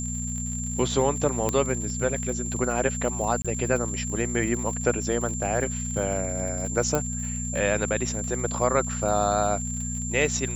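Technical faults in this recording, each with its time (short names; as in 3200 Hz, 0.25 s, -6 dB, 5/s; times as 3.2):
crackle 81/s -33 dBFS
hum 60 Hz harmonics 4 -32 dBFS
tone 7300 Hz -32 dBFS
1.49 pop -11 dBFS
3.42–3.45 gap 26 ms
6.95 pop -10 dBFS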